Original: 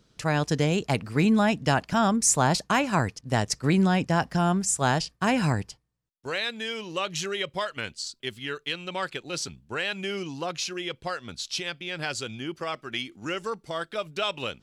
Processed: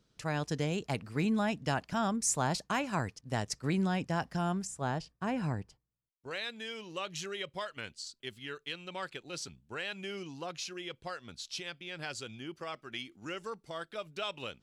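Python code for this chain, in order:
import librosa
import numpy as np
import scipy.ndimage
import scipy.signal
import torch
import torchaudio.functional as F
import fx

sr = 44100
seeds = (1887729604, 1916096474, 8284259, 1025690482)

y = fx.high_shelf(x, sr, hz=2000.0, db=-10.5, at=(4.67, 6.31))
y = F.gain(torch.from_numpy(y), -9.0).numpy()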